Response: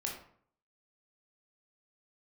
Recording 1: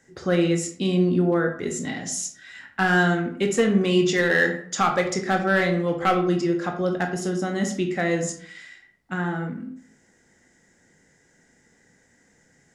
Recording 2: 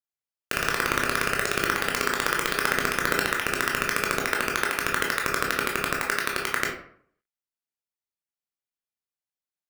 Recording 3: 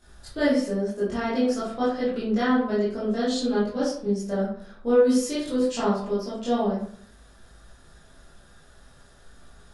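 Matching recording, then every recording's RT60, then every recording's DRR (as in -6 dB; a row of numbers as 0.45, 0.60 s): 2; 0.55, 0.60, 0.55 s; 3.5, -1.5, -11.0 dB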